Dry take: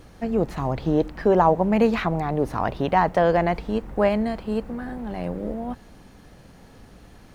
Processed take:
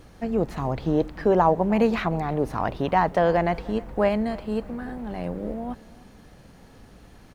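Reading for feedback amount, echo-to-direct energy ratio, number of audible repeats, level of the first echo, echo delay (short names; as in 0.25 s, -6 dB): 37%, -21.5 dB, 2, -22.0 dB, 0.307 s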